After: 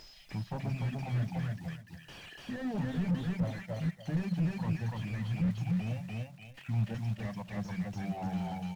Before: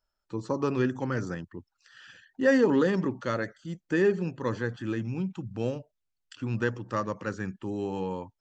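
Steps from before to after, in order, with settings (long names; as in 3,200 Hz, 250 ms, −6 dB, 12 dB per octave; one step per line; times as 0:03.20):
mains-hum notches 50/100/150/200/250/300/350 Hz
reverb reduction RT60 1.3 s
drawn EQ curve 110 Hz 0 dB, 180 Hz +4 dB, 320 Hz −20 dB, 460 Hz −27 dB, 720 Hz +2 dB, 1,300 Hz −24 dB, 2,000 Hz +9 dB, 4,700 Hz +10 dB, 6,700 Hz +15 dB, 9,700 Hz −20 dB
upward compression, threshold −35 dBFS
auto-filter low-pass saw down 1.5 Hz 580–6,900 Hz
log-companded quantiser 6 bits
on a send: repeating echo 280 ms, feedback 18%, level −3.5 dB
on the sum: wrong playback speed 25 fps video run at 24 fps
slew-rate limiting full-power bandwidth 7.3 Hz
level +2 dB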